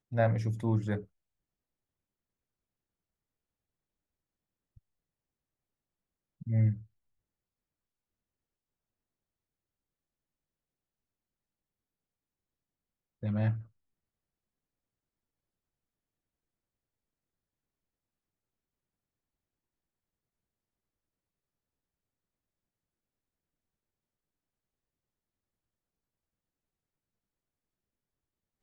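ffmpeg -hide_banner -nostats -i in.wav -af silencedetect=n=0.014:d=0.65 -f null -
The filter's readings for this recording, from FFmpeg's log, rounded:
silence_start: 1.00
silence_end: 6.42 | silence_duration: 5.42
silence_start: 6.77
silence_end: 13.23 | silence_duration: 6.46
silence_start: 13.60
silence_end: 28.62 | silence_duration: 15.02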